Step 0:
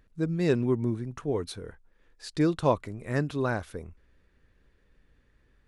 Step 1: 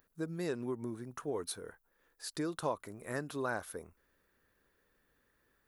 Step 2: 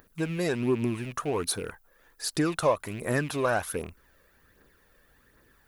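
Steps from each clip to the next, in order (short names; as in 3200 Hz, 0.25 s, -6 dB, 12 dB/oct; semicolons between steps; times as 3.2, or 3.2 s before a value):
band shelf 4400 Hz -9 dB 2.5 oct; compressor 6:1, threshold -26 dBFS, peak gain reduction 8.5 dB; RIAA curve recording; gain -1.5 dB
rattling part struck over -51 dBFS, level -44 dBFS; phaser 1.3 Hz, delay 1.9 ms, feedback 44%; in parallel at -5 dB: soft clip -34.5 dBFS, distortion -9 dB; on the sum: gain +7 dB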